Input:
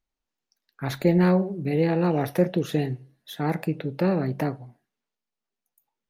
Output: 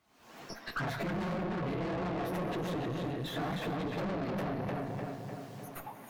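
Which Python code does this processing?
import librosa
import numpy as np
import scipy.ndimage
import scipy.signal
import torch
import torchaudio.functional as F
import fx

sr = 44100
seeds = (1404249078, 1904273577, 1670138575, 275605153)

y = fx.phase_scramble(x, sr, seeds[0], window_ms=50)
y = fx.recorder_agc(y, sr, target_db=-16.5, rise_db_per_s=71.0, max_gain_db=30)
y = scipy.signal.sosfilt(scipy.signal.butter(2, 160.0, 'highpass', fs=sr, output='sos'), y)
y = fx.peak_eq(y, sr, hz=410.0, db=-4.0, octaves=1.4)
y = fx.echo_filtered(y, sr, ms=301, feedback_pct=38, hz=3200.0, wet_db=-5)
y = fx.rev_gated(y, sr, seeds[1], gate_ms=430, shape='flat', drr_db=11.0)
y = fx.tube_stage(y, sr, drive_db=33.0, bias=0.6)
y = fx.high_shelf(y, sr, hz=3100.0, db=-10.0)
y = fx.small_body(y, sr, hz=(680.0, 1100.0), ring_ms=45, db=6)
y = fx.band_squash(y, sr, depth_pct=70)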